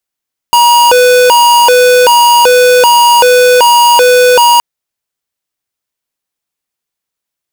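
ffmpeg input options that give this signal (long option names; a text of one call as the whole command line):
ffmpeg -f lavfi -i "aevalsrc='0.562*(2*lt(mod((725*t+228/1.3*(0.5-abs(mod(1.3*t,1)-0.5))),1),0.5)-1)':duration=4.07:sample_rate=44100" out.wav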